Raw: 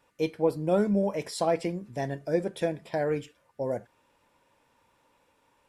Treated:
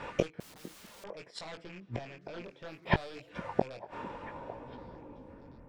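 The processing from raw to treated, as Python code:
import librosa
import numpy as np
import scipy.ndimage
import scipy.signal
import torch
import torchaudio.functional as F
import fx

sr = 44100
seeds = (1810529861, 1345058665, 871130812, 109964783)

p1 = fx.rattle_buzz(x, sr, strikes_db=-38.0, level_db=-20.0)
p2 = fx.peak_eq(p1, sr, hz=7900.0, db=13.0, octaves=2.8)
p3 = fx.rider(p2, sr, range_db=10, speed_s=0.5)
p4 = p2 + F.gain(torch.from_numpy(p3), 0.0).numpy()
p5 = fx.filter_sweep_lowpass(p4, sr, from_hz=1700.0, to_hz=200.0, start_s=3.76, end_s=5.67, q=0.75)
p6 = fx.fold_sine(p5, sr, drive_db=12, ceiling_db=-4.5)
p7 = fx.gate_flip(p6, sr, shuts_db=-13.0, range_db=-38)
p8 = fx.chorus_voices(p7, sr, voices=2, hz=0.63, base_ms=20, depth_ms=4.0, mix_pct=35)
p9 = fx.overflow_wrap(p8, sr, gain_db=55.0, at=(0.4, 1.04))
p10 = fx.air_absorb(p9, sr, metres=110.0, at=(1.64, 2.97))
p11 = fx.echo_stepped(p10, sr, ms=452, hz=240.0, octaves=1.4, feedback_pct=70, wet_db=-10.5)
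y = F.gain(torch.from_numpy(p11), 5.5).numpy()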